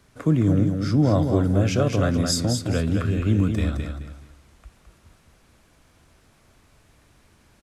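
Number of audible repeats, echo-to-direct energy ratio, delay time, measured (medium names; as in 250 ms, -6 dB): 3, -5.5 dB, 214 ms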